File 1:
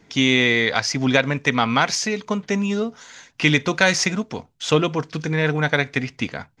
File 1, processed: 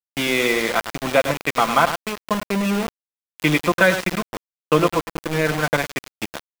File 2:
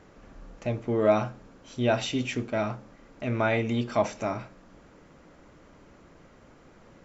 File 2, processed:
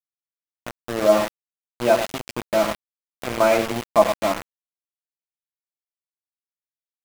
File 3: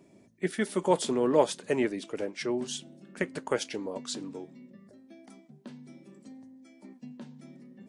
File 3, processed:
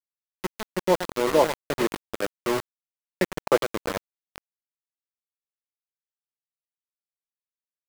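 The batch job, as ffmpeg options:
-af "highpass=f=160:w=0.5412,highpass=f=160:w=1.3066,equalizer=f=600:t=q:w=4:g=6,equalizer=f=1100:t=q:w=4:g=6,equalizer=f=1900:t=q:w=4:g=-5,lowpass=f=3000:w=0.5412,lowpass=f=3000:w=1.3066,dynaudnorm=f=140:g=21:m=2.51,aecho=1:1:5.9:0.48,aecho=1:1:104|208|312:0.355|0.0603|0.0103,aeval=exprs='val(0)*gte(abs(val(0)),0.0944)':c=same,volume=0.891"

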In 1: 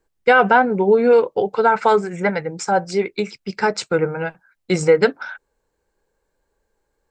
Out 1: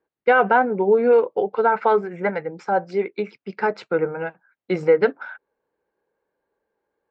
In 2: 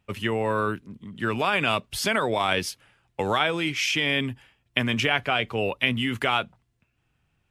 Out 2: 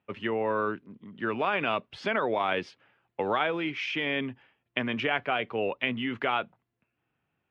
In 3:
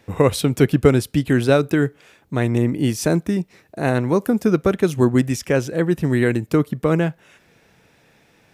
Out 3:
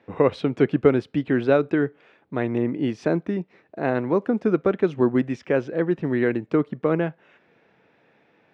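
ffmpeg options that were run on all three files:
-af "highpass=320,lowpass=3200,aemphasis=mode=reproduction:type=bsi,volume=0.708"

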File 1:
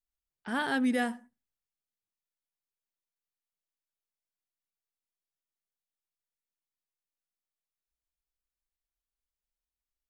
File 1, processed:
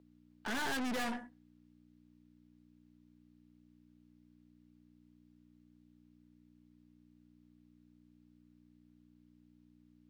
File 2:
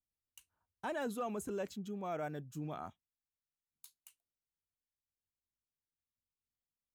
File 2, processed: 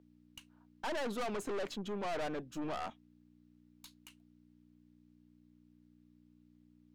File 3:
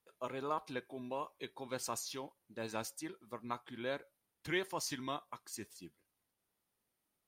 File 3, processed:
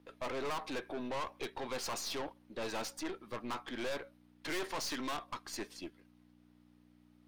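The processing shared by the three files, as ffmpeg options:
-filter_complex "[0:a]aeval=exprs='val(0)+0.000891*(sin(2*PI*60*n/s)+sin(2*PI*2*60*n/s)/2+sin(2*PI*3*60*n/s)/3+sin(2*PI*4*60*n/s)/4+sin(2*PI*5*60*n/s)/5)':c=same,acrossover=split=240 5100:gain=0.0794 1 0.158[s0][s1][s2];[s0][s1][s2]amix=inputs=3:normalize=0,aeval=exprs='(tanh(282*val(0)+0.5)-tanh(0.5))/282':c=same,volume=4.73"

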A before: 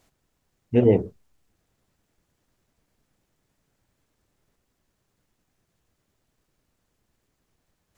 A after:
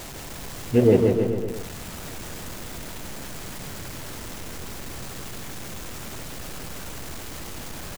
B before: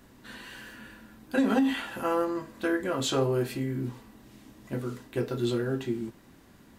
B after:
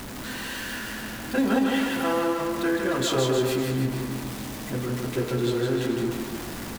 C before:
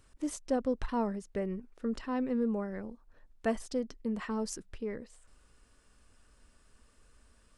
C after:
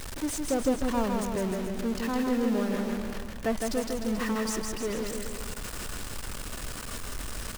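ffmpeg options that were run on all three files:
-af "aeval=exprs='val(0)+0.5*0.0251*sgn(val(0))':c=same,aecho=1:1:160|304|433.6|550.2|655.2:0.631|0.398|0.251|0.158|0.1"

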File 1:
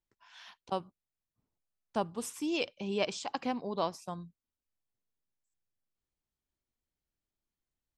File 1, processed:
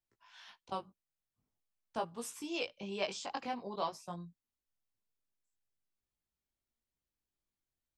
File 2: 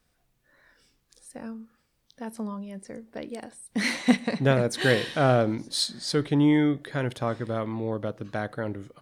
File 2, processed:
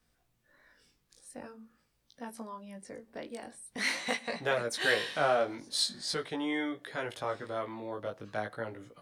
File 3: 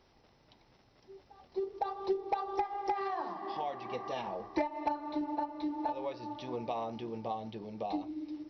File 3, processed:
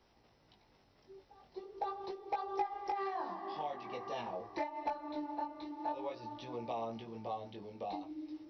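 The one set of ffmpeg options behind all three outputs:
-filter_complex "[0:a]acrossover=split=460|560[s0][s1][s2];[s0]acompressor=threshold=0.00794:ratio=6[s3];[s3][s1][s2]amix=inputs=3:normalize=0,flanger=delay=17:depth=4.2:speed=0.45"

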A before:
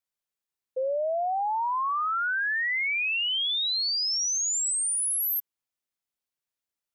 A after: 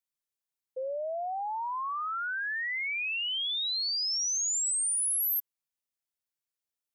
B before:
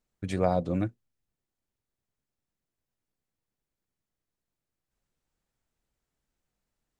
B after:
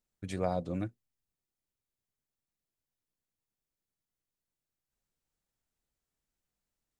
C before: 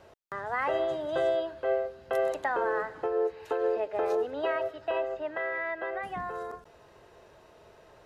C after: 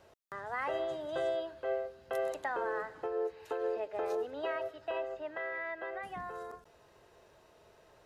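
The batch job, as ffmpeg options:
-af "highshelf=f=4200:g=5.5,volume=0.473"

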